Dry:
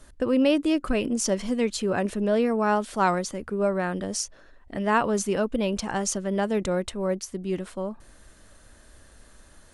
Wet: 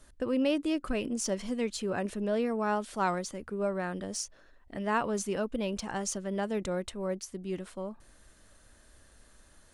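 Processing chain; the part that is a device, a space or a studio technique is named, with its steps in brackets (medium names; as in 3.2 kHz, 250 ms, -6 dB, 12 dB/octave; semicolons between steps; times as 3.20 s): exciter from parts (in parallel at -11 dB: high-pass 2.1 kHz 6 dB/octave + saturation -36 dBFS, distortion -5 dB); on the sum: trim -7 dB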